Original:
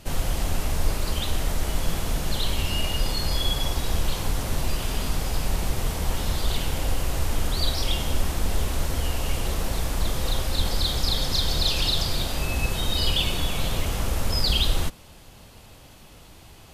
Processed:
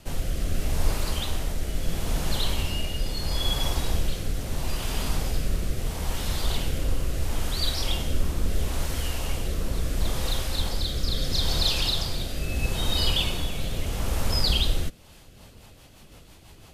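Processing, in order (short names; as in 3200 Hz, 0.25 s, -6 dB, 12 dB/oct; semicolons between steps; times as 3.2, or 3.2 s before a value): rotary speaker horn 0.75 Hz, later 6 Hz, at 14.78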